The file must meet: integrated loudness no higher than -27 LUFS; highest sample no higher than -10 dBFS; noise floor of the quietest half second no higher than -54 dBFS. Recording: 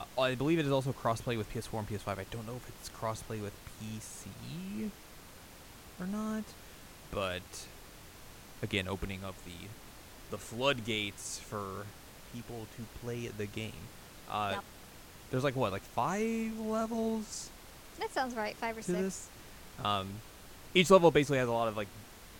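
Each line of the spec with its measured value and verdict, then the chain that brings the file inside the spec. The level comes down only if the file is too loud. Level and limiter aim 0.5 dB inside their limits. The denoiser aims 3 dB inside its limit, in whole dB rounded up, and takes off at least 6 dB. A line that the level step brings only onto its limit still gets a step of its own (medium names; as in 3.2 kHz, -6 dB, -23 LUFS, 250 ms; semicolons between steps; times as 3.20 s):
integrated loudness -34.5 LUFS: pass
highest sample -8.5 dBFS: fail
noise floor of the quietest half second -52 dBFS: fail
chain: noise reduction 6 dB, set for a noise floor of -52 dBFS; peak limiter -10.5 dBFS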